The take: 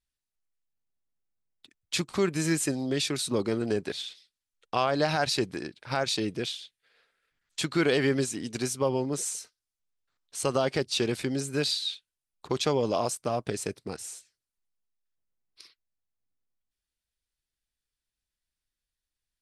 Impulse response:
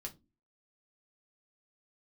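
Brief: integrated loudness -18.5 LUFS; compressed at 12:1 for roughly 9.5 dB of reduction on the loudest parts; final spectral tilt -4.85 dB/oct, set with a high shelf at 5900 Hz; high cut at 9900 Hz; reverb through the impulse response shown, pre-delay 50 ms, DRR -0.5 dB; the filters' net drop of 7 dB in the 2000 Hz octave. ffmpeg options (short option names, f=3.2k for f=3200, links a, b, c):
-filter_complex "[0:a]lowpass=9.9k,equalizer=f=2k:t=o:g=-8.5,highshelf=f=5.9k:g=-8.5,acompressor=threshold=-31dB:ratio=12,asplit=2[a][b];[1:a]atrim=start_sample=2205,adelay=50[c];[b][c]afir=irnorm=-1:irlink=0,volume=3.5dB[d];[a][d]amix=inputs=2:normalize=0,volume=15dB"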